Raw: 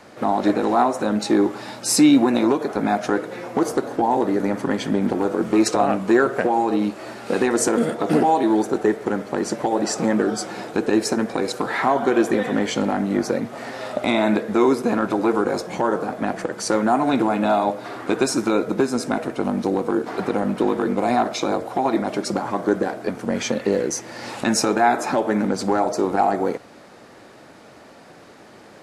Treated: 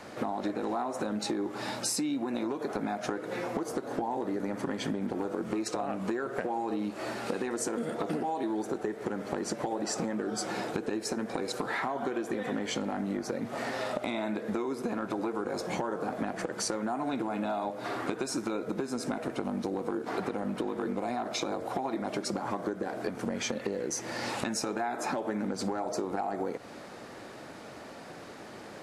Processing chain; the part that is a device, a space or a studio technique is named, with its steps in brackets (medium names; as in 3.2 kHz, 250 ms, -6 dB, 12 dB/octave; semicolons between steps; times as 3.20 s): serial compression, peaks first (compression, threshold -24 dBFS, peak gain reduction 13 dB; compression 2.5:1, threshold -31 dBFS, peak gain reduction 7 dB)